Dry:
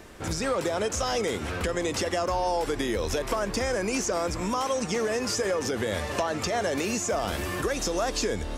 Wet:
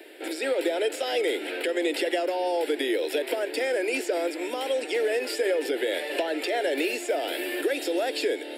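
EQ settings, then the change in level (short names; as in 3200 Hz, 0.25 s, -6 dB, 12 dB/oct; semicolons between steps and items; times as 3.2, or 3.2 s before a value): steep high-pass 290 Hz 72 dB/oct; fixed phaser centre 2700 Hz, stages 4; +5.0 dB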